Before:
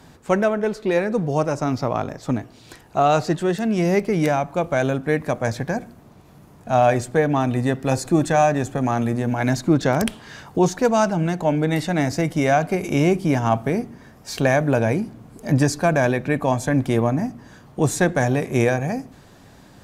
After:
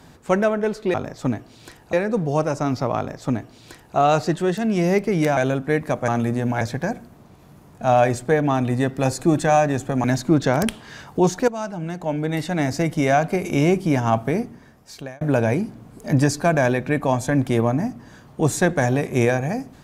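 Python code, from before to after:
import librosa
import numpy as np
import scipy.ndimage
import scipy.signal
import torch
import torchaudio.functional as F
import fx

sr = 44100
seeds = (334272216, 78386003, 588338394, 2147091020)

y = fx.edit(x, sr, fx.duplicate(start_s=1.98, length_s=0.99, to_s=0.94),
    fx.cut(start_s=4.38, length_s=0.38),
    fx.move(start_s=8.9, length_s=0.53, to_s=5.47),
    fx.fade_in_from(start_s=10.87, length_s=1.34, floor_db=-13.0),
    fx.fade_out_span(start_s=13.76, length_s=0.84), tone=tone)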